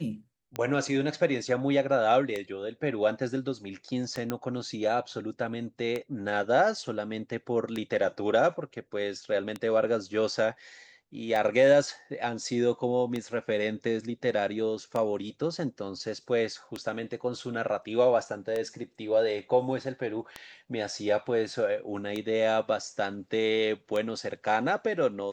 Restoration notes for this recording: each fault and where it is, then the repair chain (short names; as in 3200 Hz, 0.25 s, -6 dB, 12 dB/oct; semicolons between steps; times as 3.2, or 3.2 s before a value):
tick 33 1/3 rpm -18 dBFS
4.3 pop -16 dBFS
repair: de-click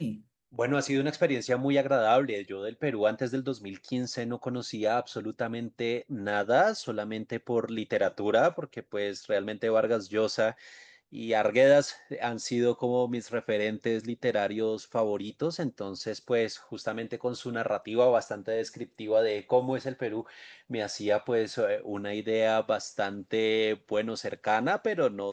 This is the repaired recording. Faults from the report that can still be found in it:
none